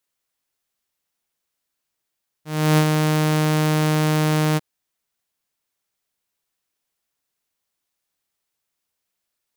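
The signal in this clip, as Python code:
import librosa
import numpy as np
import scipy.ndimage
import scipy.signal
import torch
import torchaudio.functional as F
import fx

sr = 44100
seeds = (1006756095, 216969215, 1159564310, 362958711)

y = fx.adsr_tone(sr, wave='saw', hz=154.0, attack_ms=326.0, decay_ms=67.0, sustain_db=-4.5, held_s=2.12, release_ms=27.0, level_db=-9.5)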